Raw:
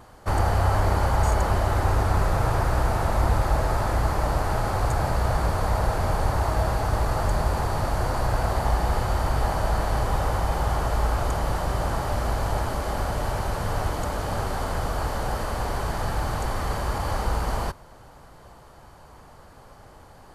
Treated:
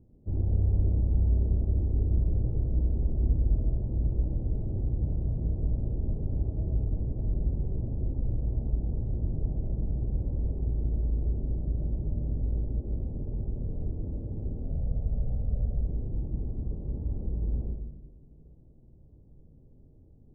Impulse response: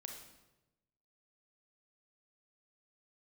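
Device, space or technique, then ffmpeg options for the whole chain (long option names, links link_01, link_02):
next room: -filter_complex "[0:a]asettb=1/sr,asplit=3[link_01][link_02][link_03];[link_01]atrim=end=14.644[link_04];[link_02]atrim=start=14.64:end=15.82,asetpts=PTS-STARTPTS,afade=type=in:duration=0.004:curve=qsin,afade=type=out:start_time=1.176:duration=0.004:curve=qsin,aecho=1:1:1.5:0.71,atrim=end_sample=52038[link_05];[link_03]atrim=start=15.816[link_06];[link_04][link_05]acrossfade=duration=0.004:curve1=hsin:curve2=qsin[link_07];[link_07][link_06]acrossfade=duration=0.004:curve1=qsin:curve2=hsin,lowpass=frequency=350:width=0.5412,lowpass=frequency=350:width=1.3066[link_08];[1:a]atrim=start_sample=2205[link_09];[link_08][link_09]afir=irnorm=-1:irlink=0,equalizer=frequency=2800:width=1.6:gain=-12.5"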